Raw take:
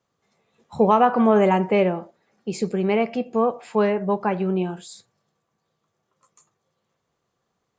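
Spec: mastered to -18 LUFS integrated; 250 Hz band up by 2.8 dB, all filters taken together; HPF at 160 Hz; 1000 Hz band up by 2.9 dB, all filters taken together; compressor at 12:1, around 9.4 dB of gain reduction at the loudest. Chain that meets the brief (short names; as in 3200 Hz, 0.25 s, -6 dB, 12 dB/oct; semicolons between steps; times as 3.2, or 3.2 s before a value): HPF 160 Hz; bell 250 Hz +5 dB; bell 1000 Hz +3.5 dB; compressor 12:1, threshold -18 dBFS; gain +7 dB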